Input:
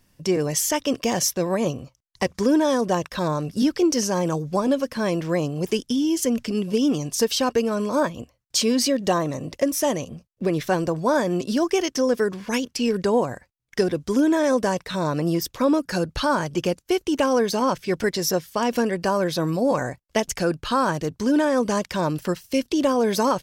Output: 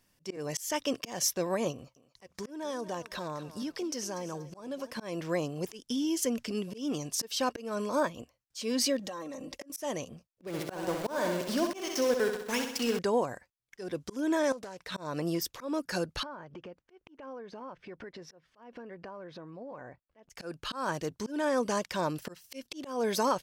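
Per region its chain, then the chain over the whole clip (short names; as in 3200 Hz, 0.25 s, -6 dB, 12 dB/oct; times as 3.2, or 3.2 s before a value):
1.72–4.92 compressor 2:1, threshold -30 dBFS + thinning echo 0.24 s, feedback 27%, high-pass 360 Hz, level -14 dB
8.99–9.7 comb 3.7 ms, depth 86% + compressor 10:1, threshold -29 dBFS
10.47–12.99 HPF 50 Hz 24 dB/oct + sample gate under -28 dBFS + feedback echo 64 ms, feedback 57%, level -7 dB
14.52–14.92 compressor 16:1, threshold -30 dBFS + Doppler distortion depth 0.35 ms
16.23–20.3 LPF 1900 Hz + compressor, threshold -34 dBFS
whole clip: low shelf 250 Hz -8 dB; auto swell 0.213 s; gain -5.5 dB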